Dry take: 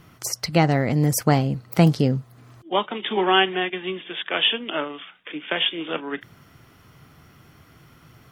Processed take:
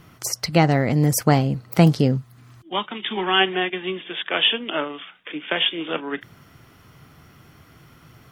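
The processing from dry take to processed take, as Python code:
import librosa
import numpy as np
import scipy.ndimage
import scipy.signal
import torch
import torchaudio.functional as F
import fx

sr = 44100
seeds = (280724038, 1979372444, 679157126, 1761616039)

y = fx.peak_eq(x, sr, hz=530.0, db=-9.0, octaves=1.5, at=(2.17, 3.39), fade=0.02)
y = F.gain(torch.from_numpy(y), 1.5).numpy()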